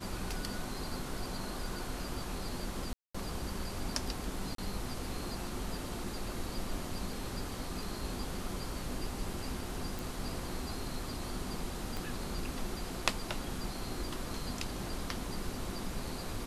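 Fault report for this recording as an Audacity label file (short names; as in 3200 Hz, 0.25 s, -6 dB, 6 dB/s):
2.930000	3.150000	gap 0.215 s
4.550000	4.580000	gap 33 ms
9.990000	9.990000	pop
11.970000	11.970000	pop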